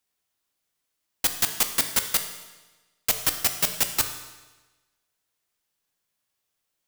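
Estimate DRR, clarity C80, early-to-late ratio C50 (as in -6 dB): 6.5 dB, 10.5 dB, 9.0 dB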